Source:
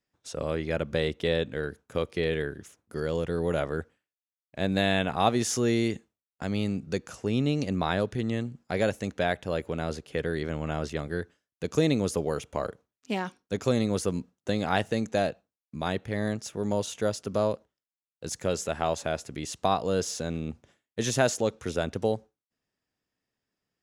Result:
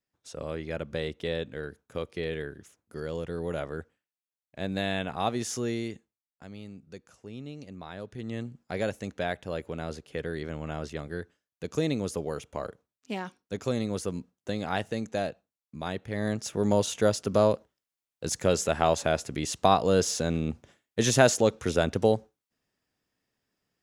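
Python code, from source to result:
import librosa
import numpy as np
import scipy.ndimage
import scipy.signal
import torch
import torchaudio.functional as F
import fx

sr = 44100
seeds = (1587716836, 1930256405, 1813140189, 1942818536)

y = fx.gain(x, sr, db=fx.line((5.61, -5.0), (6.57, -15.0), (7.91, -15.0), (8.41, -4.0), (16.01, -4.0), (16.54, 4.0)))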